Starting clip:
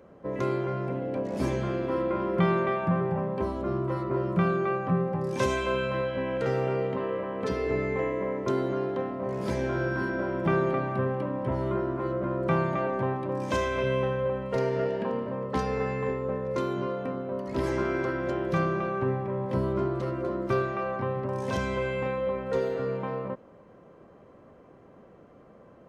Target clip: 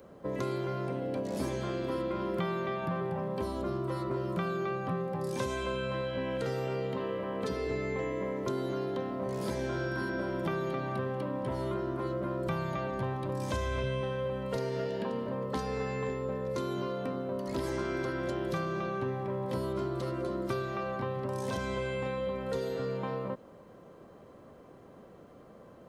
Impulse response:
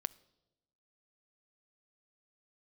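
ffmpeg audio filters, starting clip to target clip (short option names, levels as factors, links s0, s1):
-filter_complex "[0:a]aexciter=amount=2.6:drive=3.8:freq=3400,acrossover=split=280|2400[s0][s1][s2];[s0]acompressor=threshold=0.0141:ratio=4[s3];[s1]acompressor=threshold=0.02:ratio=4[s4];[s2]acompressor=threshold=0.00398:ratio=4[s5];[s3][s4][s5]amix=inputs=3:normalize=0,asplit=3[s6][s7][s8];[s6]afade=t=out:st=12.46:d=0.02[s9];[s7]asubboost=boost=2.5:cutoff=130,afade=t=in:st=12.46:d=0.02,afade=t=out:st=14:d=0.02[s10];[s8]afade=t=in:st=14:d=0.02[s11];[s9][s10][s11]amix=inputs=3:normalize=0"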